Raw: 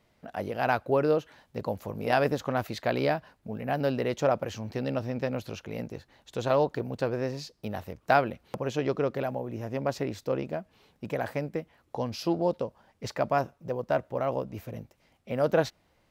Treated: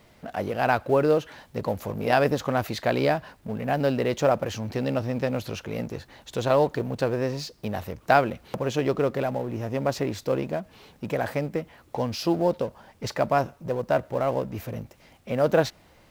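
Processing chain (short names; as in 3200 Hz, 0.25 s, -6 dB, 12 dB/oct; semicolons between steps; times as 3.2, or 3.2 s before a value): G.711 law mismatch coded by mu; gain +3 dB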